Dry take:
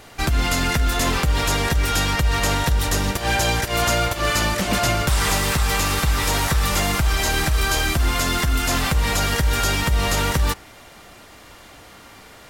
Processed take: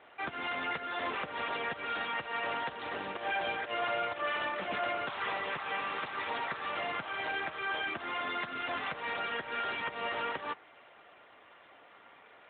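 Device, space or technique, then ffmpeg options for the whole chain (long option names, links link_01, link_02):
telephone: -af "highpass=400,lowpass=3200,asoftclip=type=tanh:threshold=-14dB,volume=-8.5dB" -ar 8000 -c:a libopencore_amrnb -b:a 12200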